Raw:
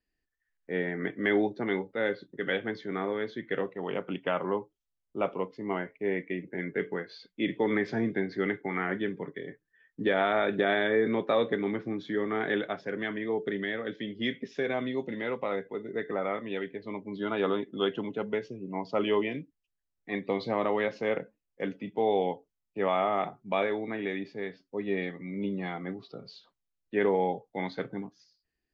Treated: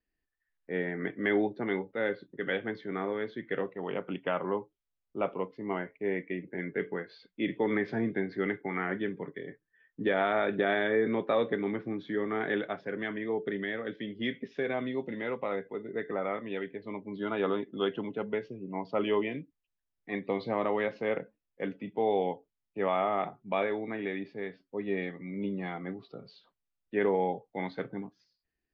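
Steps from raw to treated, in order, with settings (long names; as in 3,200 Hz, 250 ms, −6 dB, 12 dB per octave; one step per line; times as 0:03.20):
low-pass filter 3,500 Hz 12 dB per octave
level −1.5 dB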